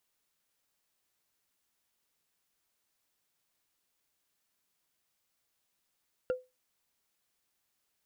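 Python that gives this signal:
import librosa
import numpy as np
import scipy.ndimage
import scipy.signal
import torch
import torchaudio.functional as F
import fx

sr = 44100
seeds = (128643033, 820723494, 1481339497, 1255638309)

y = fx.strike_wood(sr, length_s=0.45, level_db=-24, body='bar', hz=507.0, decay_s=0.23, tilt_db=10.5, modes=5)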